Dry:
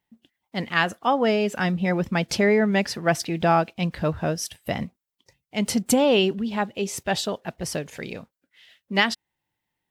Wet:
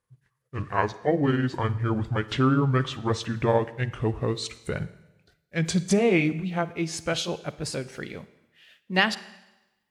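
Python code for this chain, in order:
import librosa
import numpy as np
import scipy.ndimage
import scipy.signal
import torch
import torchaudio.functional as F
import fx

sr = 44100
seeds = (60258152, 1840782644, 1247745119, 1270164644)

y = fx.pitch_glide(x, sr, semitones=-10.0, runs='ending unshifted')
y = fx.rev_schroeder(y, sr, rt60_s=1.0, comb_ms=38, drr_db=15.5)
y = y * librosa.db_to_amplitude(-1.0)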